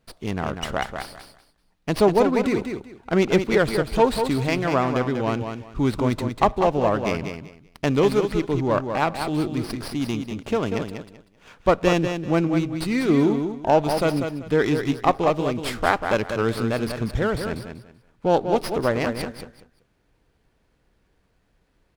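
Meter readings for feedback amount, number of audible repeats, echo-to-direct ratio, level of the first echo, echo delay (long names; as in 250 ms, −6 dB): 22%, 3, −7.0 dB, −7.0 dB, 192 ms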